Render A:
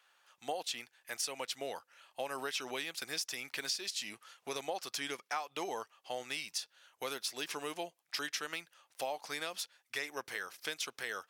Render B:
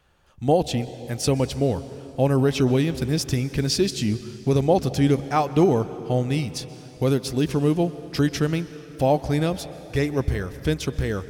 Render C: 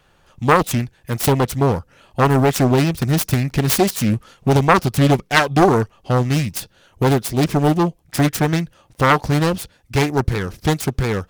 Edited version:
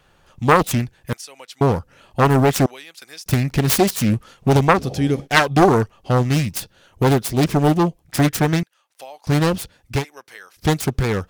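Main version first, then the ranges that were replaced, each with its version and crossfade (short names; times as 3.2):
C
1.13–1.61 from A
2.66–3.26 from A
4.75–5.23 from B, crossfade 0.10 s
8.63–9.27 from A
10–10.61 from A, crossfade 0.10 s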